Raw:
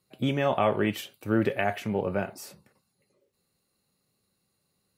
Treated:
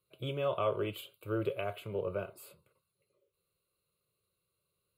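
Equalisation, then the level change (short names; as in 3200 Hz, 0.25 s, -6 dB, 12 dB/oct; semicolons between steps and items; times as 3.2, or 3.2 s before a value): dynamic EQ 2100 Hz, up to -5 dB, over -46 dBFS, Q 1.4; fixed phaser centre 1200 Hz, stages 8; -4.5 dB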